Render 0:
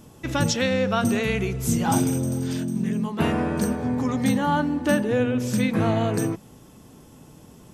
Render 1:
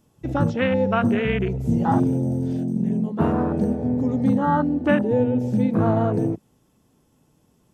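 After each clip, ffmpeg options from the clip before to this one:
-filter_complex "[0:a]afwtdn=0.0447,acrossover=split=3900[s0][s1];[s1]acompressor=threshold=0.00141:ratio=4:attack=1:release=60[s2];[s0][s2]amix=inputs=2:normalize=0,volume=1.33"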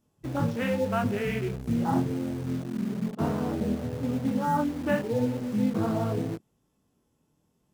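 -filter_complex "[0:a]flanger=delay=19.5:depth=6.8:speed=0.89,asplit=2[s0][s1];[s1]acrusher=bits=4:mix=0:aa=0.000001,volume=0.398[s2];[s0][s2]amix=inputs=2:normalize=0,volume=0.447"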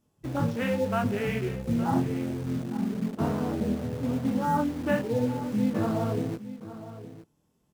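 -af "aecho=1:1:864:0.2"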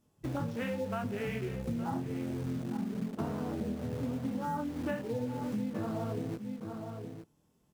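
-af "acompressor=threshold=0.0251:ratio=6"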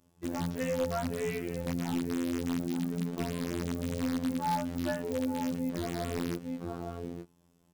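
-filter_complex "[0:a]afftfilt=real='hypot(re,im)*cos(PI*b)':imag='0':win_size=2048:overlap=0.75,asplit=2[s0][s1];[s1]aeval=exprs='(mod(26.6*val(0)+1,2)-1)/26.6':c=same,volume=0.631[s2];[s0][s2]amix=inputs=2:normalize=0,volume=1.33"

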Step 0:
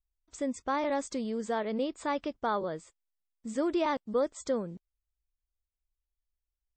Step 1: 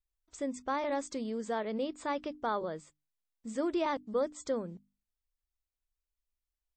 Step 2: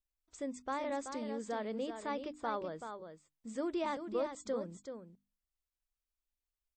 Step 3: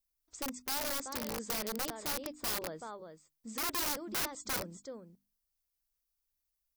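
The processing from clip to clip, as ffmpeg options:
-af "bandreject=f=50:t=h:w=6,bandreject=f=100:t=h:w=6,bandreject=f=150:t=h:w=6,bandreject=f=200:t=h:w=6,bandreject=f=250:t=h:w=6,bandreject=f=300:t=h:w=6,volume=0.75"
-af "aecho=1:1:381:0.398,volume=0.596"
-af "aeval=exprs='(mod(42.2*val(0)+1,2)-1)/42.2':c=same,aexciter=amount=2.8:drive=1.4:freq=4500"

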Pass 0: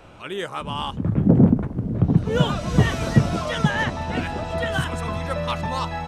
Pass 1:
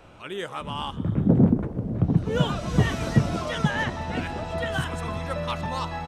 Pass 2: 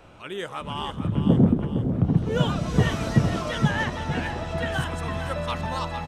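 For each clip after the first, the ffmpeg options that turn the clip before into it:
-filter_complex "[0:a]asplit=6[s0][s1][s2][s3][s4][s5];[s1]adelay=123,afreqshift=98,volume=0.1[s6];[s2]adelay=246,afreqshift=196,volume=0.0569[s7];[s3]adelay=369,afreqshift=294,volume=0.0324[s8];[s4]adelay=492,afreqshift=392,volume=0.0186[s9];[s5]adelay=615,afreqshift=490,volume=0.0106[s10];[s0][s6][s7][s8][s9][s10]amix=inputs=6:normalize=0,volume=0.668"
-af "aecho=1:1:458|916|1374|1832|2290:0.355|0.149|0.0626|0.0263|0.011"

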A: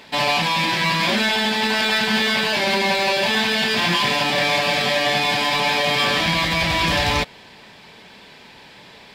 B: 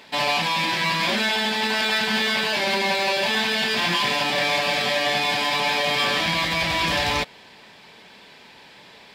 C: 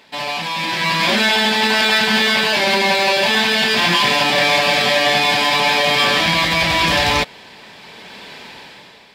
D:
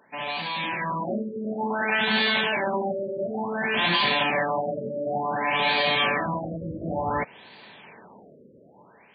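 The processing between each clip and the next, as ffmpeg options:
-af "lowshelf=f=170:g=-6.5,volume=0.75"
-af "dynaudnorm=f=190:g=9:m=6.68,volume=0.794"
-af "highpass=96,afftfilt=real='re*lt(b*sr/1024,580*pow(4800/580,0.5+0.5*sin(2*PI*0.56*pts/sr)))':imag='im*lt(b*sr/1024,580*pow(4800/580,0.5+0.5*sin(2*PI*0.56*pts/sr)))':win_size=1024:overlap=0.75,volume=0.447"

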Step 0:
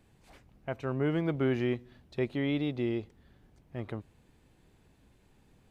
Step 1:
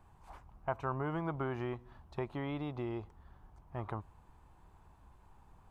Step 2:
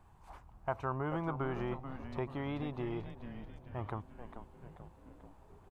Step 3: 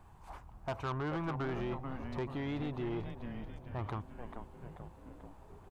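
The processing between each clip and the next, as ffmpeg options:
-af "highshelf=f=2100:g=-12,acompressor=threshold=0.0224:ratio=2.5,equalizer=f=125:t=o:w=1:g=-6,equalizer=f=250:t=o:w=1:g=-11,equalizer=f=500:t=o:w=1:g=-10,equalizer=f=1000:t=o:w=1:g=11,equalizer=f=2000:t=o:w=1:g=-7,equalizer=f=4000:t=o:w=1:g=-5,volume=2.24"
-filter_complex "[0:a]asplit=8[s0][s1][s2][s3][s4][s5][s6][s7];[s1]adelay=437,afreqshift=-130,volume=0.376[s8];[s2]adelay=874,afreqshift=-260,volume=0.214[s9];[s3]adelay=1311,afreqshift=-390,volume=0.122[s10];[s4]adelay=1748,afreqshift=-520,volume=0.07[s11];[s5]adelay=2185,afreqshift=-650,volume=0.0398[s12];[s6]adelay=2622,afreqshift=-780,volume=0.0226[s13];[s7]adelay=3059,afreqshift=-910,volume=0.0129[s14];[s0][s8][s9][s10][s11][s12][s13][s14]amix=inputs=8:normalize=0"
-af "asoftclip=type=tanh:threshold=0.0178,volume=1.58"

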